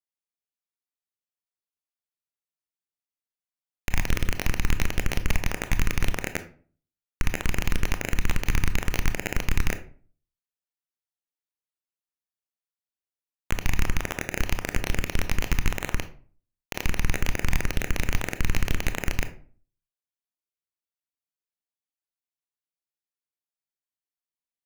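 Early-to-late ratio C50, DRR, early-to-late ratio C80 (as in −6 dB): 12.5 dB, 9.0 dB, 18.0 dB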